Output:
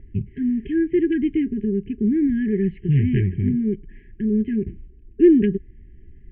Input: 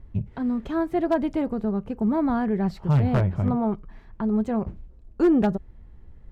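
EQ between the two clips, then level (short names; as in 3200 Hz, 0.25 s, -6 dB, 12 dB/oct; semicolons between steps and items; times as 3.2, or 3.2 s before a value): brick-wall FIR band-stop 420–1600 Hz; rippled Chebyshev low-pass 3100 Hz, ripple 3 dB; bell 570 Hz +13.5 dB 0.89 oct; +4.5 dB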